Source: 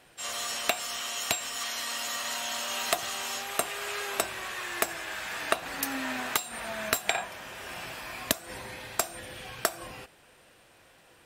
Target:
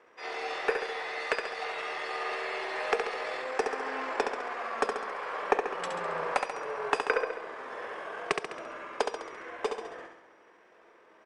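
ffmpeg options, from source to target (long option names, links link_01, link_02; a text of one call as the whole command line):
ffmpeg -i in.wav -filter_complex "[0:a]acrossover=split=380 6400:gain=0.0708 1 0.112[link_01][link_02][link_03];[link_01][link_02][link_03]amix=inputs=3:normalize=0,aeval=exprs='0.501*(cos(1*acos(clip(val(0)/0.501,-1,1)))-cos(1*PI/2))+0.00447*(cos(8*acos(clip(val(0)/0.501,-1,1)))-cos(8*PI/2))':channel_layout=same,asetrate=28595,aresample=44100,atempo=1.54221,equalizer=frequency=250:width_type=o:width=1:gain=-5,equalizer=frequency=500:width_type=o:width=1:gain=4,equalizer=frequency=4000:width_type=o:width=1:gain=-7,aecho=1:1:68|136|204|272|340|408|476:0.531|0.297|0.166|0.0932|0.0522|0.0292|0.0164" out.wav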